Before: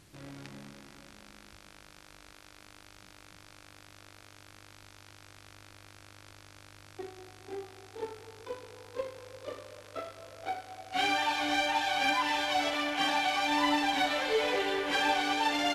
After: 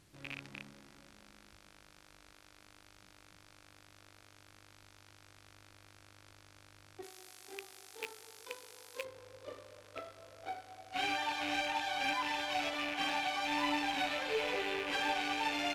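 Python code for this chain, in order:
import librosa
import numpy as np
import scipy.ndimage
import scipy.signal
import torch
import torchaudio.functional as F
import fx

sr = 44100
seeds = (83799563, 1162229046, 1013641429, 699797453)

y = fx.rattle_buzz(x, sr, strikes_db=-45.0, level_db=-22.0)
y = fx.riaa(y, sr, side='recording', at=(7.02, 9.03), fade=0.02)
y = y * 10.0 ** (-6.5 / 20.0)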